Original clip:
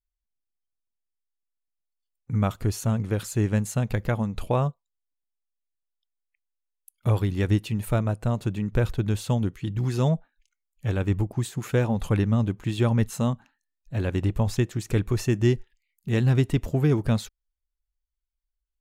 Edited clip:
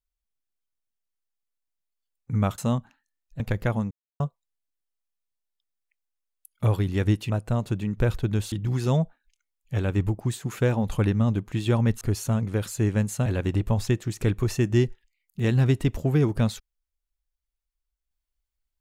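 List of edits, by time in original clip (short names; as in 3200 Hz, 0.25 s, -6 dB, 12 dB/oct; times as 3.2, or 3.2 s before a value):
2.58–3.83 swap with 13.13–13.95
4.34–4.63 mute
7.73–8.05 cut
9.27–9.64 cut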